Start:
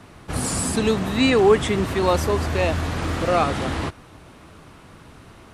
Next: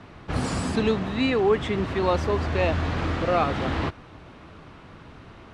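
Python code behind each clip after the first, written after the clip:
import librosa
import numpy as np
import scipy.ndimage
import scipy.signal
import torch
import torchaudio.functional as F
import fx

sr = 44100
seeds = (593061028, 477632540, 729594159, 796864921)

y = scipy.signal.sosfilt(scipy.signal.butter(2, 4100.0, 'lowpass', fs=sr, output='sos'), x)
y = fx.rider(y, sr, range_db=3, speed_s=0.5)
y = F.gain(torch.from_numpy(y), -3.0).numpy()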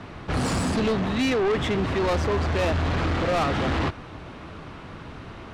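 y = 10.0 ** (-26.0 / 20.0) * np.tanh(x / 10.0 ** (-26.0 / 20.0))
y = F.gain(torch.from_numpy(y), 6.0).numpy()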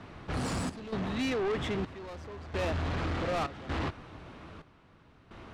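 y = fx.step_gate(x, sr, bpm=65, pattern='xxx.xxxx...x', floor_db=-12.0, edge_ms=4.5)
y = F.gain(torch.from_numpy(y), -8.0).numpy()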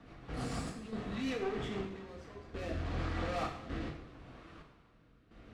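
y = fx.rotary_switch(x, sr, hz=6.7, then_hz=0.75, switch_at_s=1.57)
y = fx.rev_double_slope(y, sr, seeds[0], early_s=0.6, late_s=2.4, knee_db=-18, drr_db=-1.0)
y = F.gain(torch.from_numpy(y), -7.0).numpy()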